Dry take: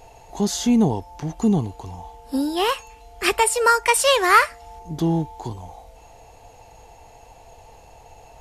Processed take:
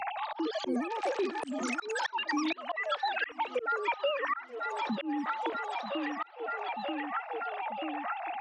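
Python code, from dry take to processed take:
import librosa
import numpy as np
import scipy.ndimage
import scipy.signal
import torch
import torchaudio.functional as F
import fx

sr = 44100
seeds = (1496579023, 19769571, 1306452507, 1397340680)

p1 = fx.sine_speech(x, sr)
p2 = fx.echo_pitch(p1, sr, ms=175, semitones=6, count=3, db_per_echo=-3.0)
p3 = p2 + fx.echo_feedback(p2, sr, ms=935, feedback_pct=53, wet_db=-20, dry=0)
p4 = fx.auto_swell(p3, sr, attack_ms=459.0)
p5 = fx.band_squash(p4, sr, depth_pct=100)
y = p5 * librosa.db_to_amplitude(-5.5)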